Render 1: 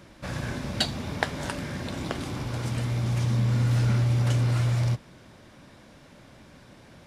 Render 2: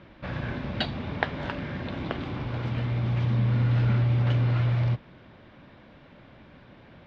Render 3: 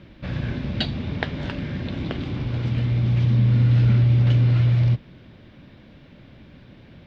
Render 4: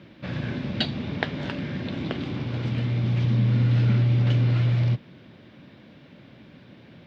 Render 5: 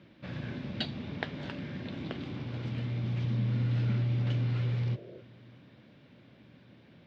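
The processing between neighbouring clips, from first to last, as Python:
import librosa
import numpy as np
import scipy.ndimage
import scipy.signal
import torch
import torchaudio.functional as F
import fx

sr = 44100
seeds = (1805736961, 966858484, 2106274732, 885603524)

y1 = scipy.signal.sosfilt(scipy.signal.butter(4, 3500.0, 'lowpass', fs=sr, output='sos'), x)
y2 = fx.peak_eq(y1, sr, hz=1000.0, db=-11.0, octaves=2.3)
y2 = y2 * 10.0 ** (7.0 / 20.0)
y3 = scipy.signal.sosfilt(scipy.signal.butter(2, 130.0, 'highpass', fs=sr, output='sos'), y2)
y4 = fx.spec_repair(y3, sr, seeds[0], start_s=4.47, length_s=0.71, low_hz=320.0, high_hz=690.0, source='before')
y4 = fx.echo_feedback(y4, sr, ms=629, feedback_pct=53, wet_db=-24)
y4 = y4 * 10.0 ** (-8.5 / 20.0)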